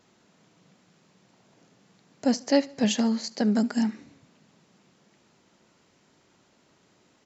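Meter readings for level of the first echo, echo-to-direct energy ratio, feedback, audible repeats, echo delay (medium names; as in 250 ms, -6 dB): -22.0 dB, -21.0 dB, 44%, 2, 72 ms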